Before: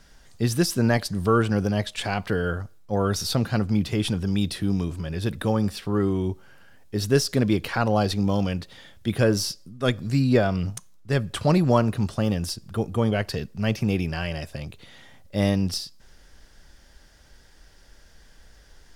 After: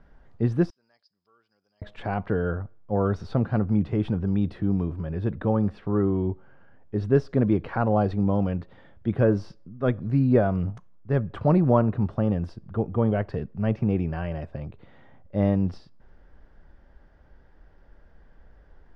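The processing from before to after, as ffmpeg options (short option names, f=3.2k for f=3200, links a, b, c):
-filter_complex "[0:a]asettb=1/sr,asplit=3[a][b][c];[a]atrim=end=0.704[d];[b]atrim=start=0.7:end=1.82,asetpts=PTS-STARTPTS,afade=t=in:d=0.004:c=qsin,afade=t=out:st=1.116:d=0.004:c=qsin,bandpass=f=5k:t=q:w=17[e];[c]atrim=start=1.816[f];[d][e]acrossfade=d=0.004:c1=hsin:c2=qsin[g];[g][f]acrossfade=d=0.004:c1=qsin:c2=hsin,lowpass=1.2k"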